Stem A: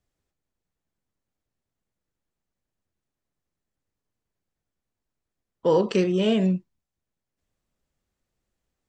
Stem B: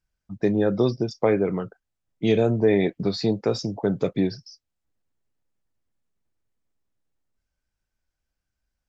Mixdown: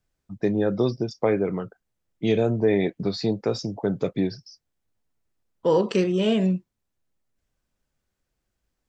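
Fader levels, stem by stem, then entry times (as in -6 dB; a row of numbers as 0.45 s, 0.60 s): 0.0 dB, -1.5 dB; 0.00 s, 0.00 s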